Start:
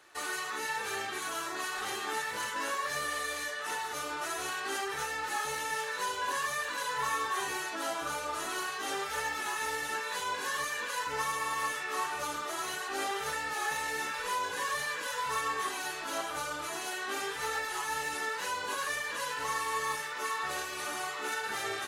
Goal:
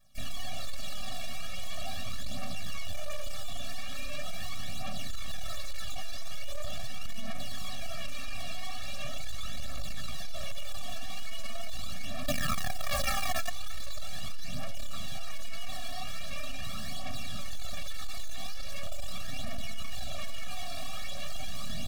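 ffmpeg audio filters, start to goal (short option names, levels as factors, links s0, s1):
-filter_complex "[0:a]asettb=1/sr,asplit=3[s0][s1][s2];[s0]atrim=end=8.424[s3];[s1]atrim=start=8.42:end=9.67,asetpts=PTS-STARTPTS,afade=t=in:d=0.004:c=qsin,afade=t=out:st=1.246:d=0.004:c=qsin,aemphasis=mode=reproduction:type=50fm[s4];[s2]atrim=start=9.666[s5];[s3][s4]acrossfade=d=0.004:c1=hsin:c2=qsin[s6];[s6][s5]acrossfade=d=0.004:c1=qsin:c2=hsin,afwtdn=0.0112,adynamicequalizer=threshold=0.00447:dfrequency=980:dqfactor=2.8:tfrequency=980:tqfactor=2.8:attack=5:release=100:ratio=0.375:range=2:mode=boostabove:tftype=bell,asettb=1/sr,asplit=3[s7][s8][s9];[s7]atrim=end=12.264[s10];[s8]atrim=start=12.26:end=13.49,asetpts=PTS-STARTPTS,afade=t=in:d=0.004:c=qsin,afade=t=out:st=1.226:d=0.004:c=qsin,aeval=exprs='0.0708*(cos(1*acos(clip(val(0)/0.0708,-1,1)))-cos(1*PI/2))+0.001*(cos(3*acos(clip(val(0)/0.0708,-1,1)))-cos(3*PI/2))+0.0224*(cos(5*acos(clip(val(0)/0.0708,-1,1)))-cos(5*PI/2))+0.002*(cos(7*acos(clip(val(0)/0.0708,-1,1)))-cos(7*PI/2))+0.0282*(cos(8*acos(clip(val(0)/0.0708,-1,1)))-cos(8*PI/2))':c=same[s11];[s9]atrim=start=13.486[s12];[s10][s11]acrossfade=d=0.004:c1=hsin:c2=qsin[s13];[s13][s12]acrossfade=d=0.004:c1=qsin:c2=hsin,acrossover=split=1200[s14][s15];[s14]acrusher=bits=3:mix=0:aa=0.000001[s16];[s15]aeval=exprs='abs(val(0))':c=same[s17];[s16][s17]amix=inputs=2:normalize=0,aphaser=in_gain=1:out_gain=1:delay=3:decay=0.5:speed=0.41:type=triangular,asoftclip=type=tanh:threshold=0.0119,afftfilt=real='re*eq(mod(floor(b*sr/1024/270),2),0)':imag='im*eq(mod(floor(b*sr/1024/270),2),0)':win_size=1024:overlap=0.75,volume=5.62"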